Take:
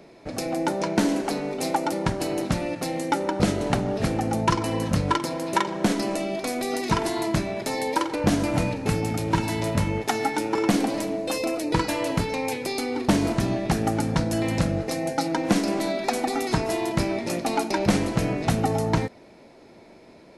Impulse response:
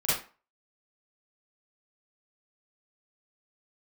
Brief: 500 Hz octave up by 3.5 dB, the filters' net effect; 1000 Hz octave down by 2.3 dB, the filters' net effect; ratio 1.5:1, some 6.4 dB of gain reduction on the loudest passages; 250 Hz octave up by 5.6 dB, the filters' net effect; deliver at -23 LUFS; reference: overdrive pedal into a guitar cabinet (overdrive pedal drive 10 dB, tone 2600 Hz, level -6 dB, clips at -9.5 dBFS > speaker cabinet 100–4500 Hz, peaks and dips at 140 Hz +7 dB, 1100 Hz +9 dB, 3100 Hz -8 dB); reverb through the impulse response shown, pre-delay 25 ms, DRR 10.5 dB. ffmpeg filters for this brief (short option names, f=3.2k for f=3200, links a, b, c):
-filter_complex "[0:a]equalizer=f=250:t=o:g=6,equalizer=f=500:t=o:g=4.5,equalizer=f=1k:t=o:g=-8.5,acompressor=threshold=-29dB:ratio=1.5,asplit=2[a][b];[1:a]atrim=start_sample=2205,adelay=25[c];[b][c]afir=irnorm=-1:irlink=0,volume=-21dB[d];[a][d]amix=inputs=2:normalize=0,asplit=2[e][f];[f]highpass=f=720:p=1,volume=10dB,asoftclip=type=tanh:threshold=-9.5dB[g];[e][g]amix=inputs=2:normalize=0,lowpass=f=2.6k:p=1,volume=-6dB,highpass=100,equalizer=f=140:t=q:w=4:g=7,equalizer=f=1.1k:t=q:w=4:g=9,equalizer=f=3.1k:t=q:w=4:g=-8,lowpass=f=4.5k:w=0.5412,lowpass=f=4.5k:w=1.3066,volume=3dB"